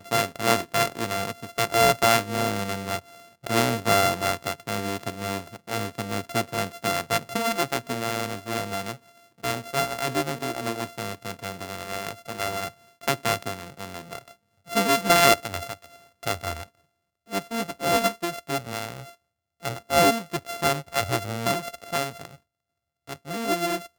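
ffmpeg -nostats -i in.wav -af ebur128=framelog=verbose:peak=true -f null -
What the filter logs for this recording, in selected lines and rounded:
Integrated loudness:
  I:         -25.8 LUFS
  Threshold: -36.4 LUFS
Loudness range:
  LRA:         6.6 LU
  Threshold: -46.6 LUFS
  LRA low:   -30.2 LUFS
  LRA high:  -23.6 LUFS
True peak:
  Peak:       -1.3 dBFS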